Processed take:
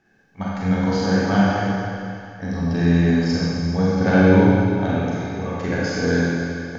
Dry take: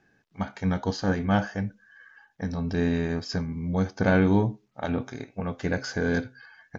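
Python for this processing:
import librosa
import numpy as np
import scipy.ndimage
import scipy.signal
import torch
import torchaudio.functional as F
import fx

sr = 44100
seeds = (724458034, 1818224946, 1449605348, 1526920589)

y = fx.quant_float(x, sr, bits=8)
y = fx.rev_schroeder(y, sr, rt60_s=2.4, comb_ms=32, drr_db=-6.5)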